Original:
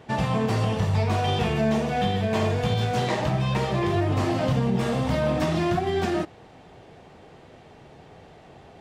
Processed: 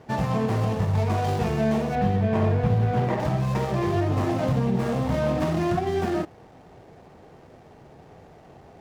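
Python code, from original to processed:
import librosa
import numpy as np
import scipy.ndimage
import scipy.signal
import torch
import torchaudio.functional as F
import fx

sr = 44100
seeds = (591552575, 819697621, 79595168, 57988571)

y = scipy.ndimage.median_filter(x, 15, mode='constant')
y = fx.bass_treble(y, sr, bass_db=4, treble_db=-12, at=(1.95, 3.2))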